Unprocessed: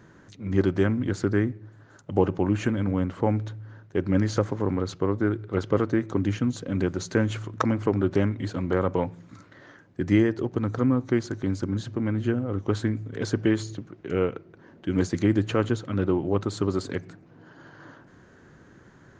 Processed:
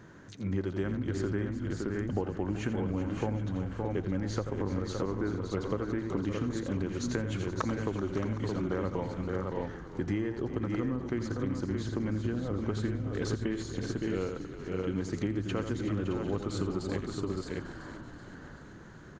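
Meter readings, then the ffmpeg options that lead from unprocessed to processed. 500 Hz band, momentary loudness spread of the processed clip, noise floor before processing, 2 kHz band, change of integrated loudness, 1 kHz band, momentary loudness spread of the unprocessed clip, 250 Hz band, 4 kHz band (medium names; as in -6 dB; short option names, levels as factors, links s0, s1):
-7.0 dB, 5 LU, -54 dBFS, -6.5 dB, -7.5 dB, -6.5 dB, 7 LU, -7.0 dB, -5.0 dB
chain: -filter_complex "[0:a]asplit=2[s0][s1];[s1]aecho=0:1:85|565|619:0.316|0.282|0.398[s2];[s0][s2]amix=inputs=2:normalize=0,acompressor=threshold=0.0355:ratio=6,asplit=2[s3][s4];[s4]asplit=7[s5][s6][s7][s8][s9][s10][s11];[s5]adelay=381,afreqshift=-42,volume=0.224[s12];[s6]adelay=762,afreqshift=-84,volume=0.143[s13];[s7]adelay=1143,afreqshift=-126,volume=0.0912[s14];[s8]adelay=1524,afreqshift=-168,volume=0.0589[s15];[s9]adelay=1905,afreqshift=-210,volume=0.0376[s16];[s10]adelay=2286,afreqshift=-252,volume=0.024[s17];[s11]adelay=2667,afreqshift=-294,volume=0.0153[s18];[s12][s13][s14][s15][s16][s17][s18]amix=inputs=7:normalize=0[s19];[s3][s19]amix=inputs=2:normalize=0"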